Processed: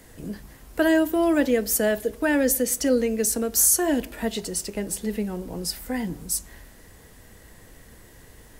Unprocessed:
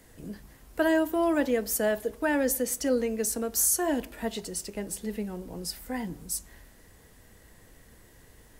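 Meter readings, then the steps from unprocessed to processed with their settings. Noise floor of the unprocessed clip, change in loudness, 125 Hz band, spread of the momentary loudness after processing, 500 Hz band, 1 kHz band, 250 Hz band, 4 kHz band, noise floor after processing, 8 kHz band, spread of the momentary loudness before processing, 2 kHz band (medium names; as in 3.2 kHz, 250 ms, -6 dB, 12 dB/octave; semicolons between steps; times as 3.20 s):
-56 dBFS, +5.0 dB, +6.0 dB, 11 LU, +4.0 dB, +1.5 dB, +5.5 dB, +6.0 dB, -50 dBFS, +6.0 dB, 12 LU, +4.5 dB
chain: dynamic bell 940 Hz, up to -6 dB, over -42 dBFS, Q 1.3; trim +6 dB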